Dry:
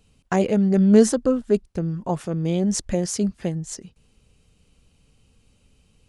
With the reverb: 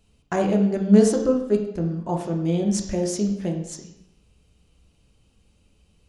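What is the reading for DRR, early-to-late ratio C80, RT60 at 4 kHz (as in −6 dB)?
2.0 dB, 9.5 dB, 0.70 s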